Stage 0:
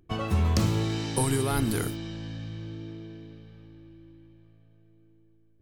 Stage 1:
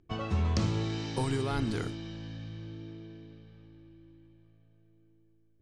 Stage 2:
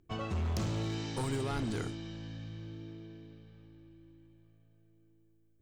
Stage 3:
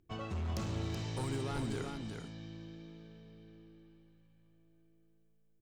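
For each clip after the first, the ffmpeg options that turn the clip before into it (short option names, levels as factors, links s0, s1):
-af "lowpass=f=6700:w=0.5412,lowpass=f=6700:w=1.3066,volume=0.596"
-af "aexciter=amount=1.4:drive=5.9:freq=6800,volume=25.1,asoftclip=hard,volume=0.0398,volume=0.794"
-af "aecho=1:1:377:0.531,volume=0.631"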